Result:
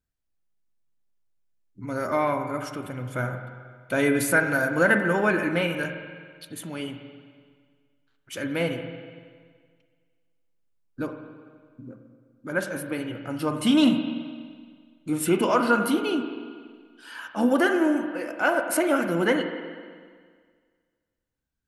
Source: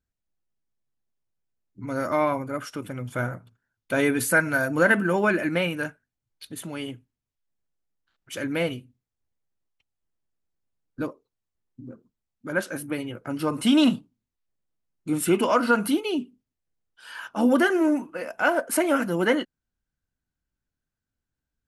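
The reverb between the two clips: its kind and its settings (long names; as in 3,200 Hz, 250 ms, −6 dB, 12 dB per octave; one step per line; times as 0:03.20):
spring reverb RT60 1.8 s, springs 42/47 ms, chirp 45 ms, DRR 6 dB
level −1 dB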